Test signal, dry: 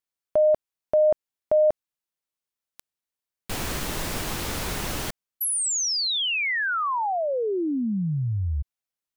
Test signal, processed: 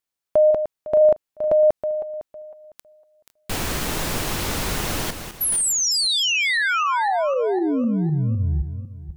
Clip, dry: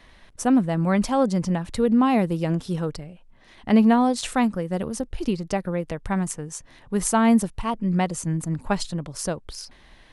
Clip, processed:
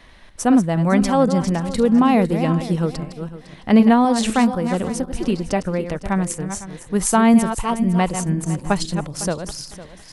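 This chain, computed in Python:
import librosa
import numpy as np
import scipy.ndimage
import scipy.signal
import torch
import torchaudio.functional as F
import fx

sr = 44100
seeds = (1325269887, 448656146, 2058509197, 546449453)

y = fx.reverse_delay_fb(x, sr, ms=253, feedback_pct=44, wet_db=-9.0)
y = y * 10.0 ** (4.0 / 20.0)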